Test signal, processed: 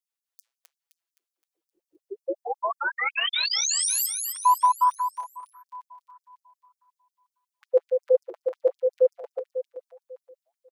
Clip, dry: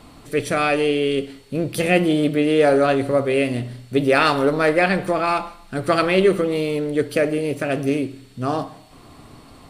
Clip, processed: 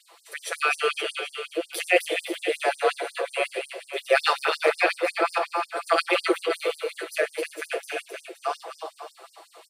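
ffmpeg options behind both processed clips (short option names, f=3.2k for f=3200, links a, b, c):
-filter_complex "[0:a]asplit=2[a][b];[b]aecho=0:1:260|520|780|1040|1300|1560:0.562|0.264|0.124|0.0584|0.0274|0.0129[c];[a][c]amix=inputs=2:normalize=0,flanger=delay=4.8:depth=7.9:regen=-87:speed=1.6:shape=triangular,equalizer=f=85:t=o:w=1.1:g=5,aecho=1:1:6:0.91,afftfilt=real='re*gte(b*sr/1024,310*pow(5000/310,0.5+0.5*sin(2*PI*5.5*pts/sr)))':imag='im*gte(b*sr/1024,310*pow(5000/310,0.5+0.5*sin(2*PI*5.5*pts/sr)))':win_size=1024:overlap=0.75"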